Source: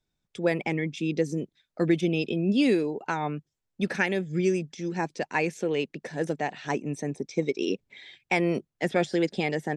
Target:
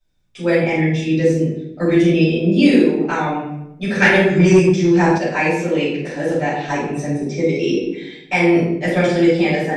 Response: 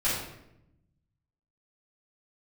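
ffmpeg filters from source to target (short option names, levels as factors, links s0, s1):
-filter_complex "[1:a]atrim=start_sample=2205[s0];[0:a][s0]afir=irnorm=-1:irlink=0,asettb=1/sr,asplit=3[s1][s2][s3];[s1]atrim=end=4.024[s4];[s2]atrim=start=4.02:end=5.18,asetpts=PTS-STARTPTS,afade=t=in:d=0.004:c=qsin,afade=t=out:st=1.156:d=0.004:c=qsin,acontrast=65[s5];[s3]atrim=start=5.176[s6];[s4][s5]acrossfade=d=0.004:c1=hsin:c2=qsin[s7];[s7][s6]acrossfade=d=0.004:c1=qsin:c2=hsin,volume=0.891"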